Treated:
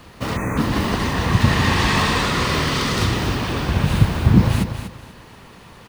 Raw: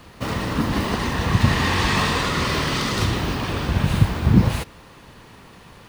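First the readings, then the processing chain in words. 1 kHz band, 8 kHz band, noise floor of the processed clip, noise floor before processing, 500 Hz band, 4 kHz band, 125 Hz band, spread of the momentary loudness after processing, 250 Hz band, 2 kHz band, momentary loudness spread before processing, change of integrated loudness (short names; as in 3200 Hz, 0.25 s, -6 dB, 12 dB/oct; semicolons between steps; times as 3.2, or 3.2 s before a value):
+2.0 dB, +2.0 dB, -44 dBFS, -46 dBFS, +2.0 dB, +2.0 dB, +2.5 dB, 8 LU, +2.0 dB, +2.0 dB, 7 LU, +2.0 dB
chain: on a send: feedback echo 0.242 s, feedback 24%, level -9 dB; on the sum: spectral gain 0.36–0.58, 2600–5900 Hz -28 dB; gain +1.5 dB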